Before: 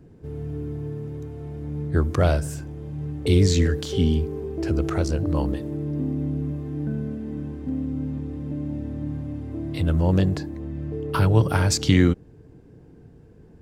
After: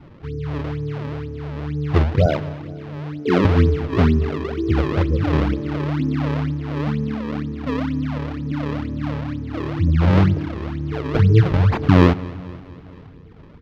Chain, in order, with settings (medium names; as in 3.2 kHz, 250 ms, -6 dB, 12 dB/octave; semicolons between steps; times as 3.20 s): CVSD coder 64 kbps; 2.26–3.45 s: high-pass 160 Hz 24 dB/octave; spectral gate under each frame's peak -15 dB strong; decimation with a swept rate 35×, swing 160% 2.1 Hz; distance through air 270 m; feedback delay 232 ms, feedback 58%, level -20 dB; on a send at -21.5 dB: reverberation RT60 1.4 s, pre-delay 6 ms; on the sum: trim +5.5 dB